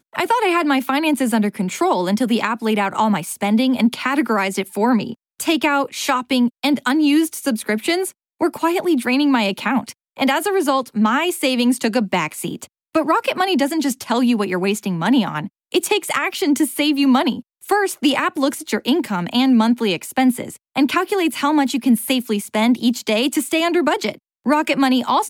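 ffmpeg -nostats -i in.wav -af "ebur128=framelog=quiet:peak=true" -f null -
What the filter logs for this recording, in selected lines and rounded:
Integrated loudness:
  I:         -18.6 LUFS
  Threshold: -28.7 LUFS
Loudness range:
  LRA:         1.2 LU
  Threshold: -38.7 LUFS
  LRA low:   -19.3 LUFS
  LRA high:  -18.1 LUFS
True peak:
  Peak:       -5.9 dBFS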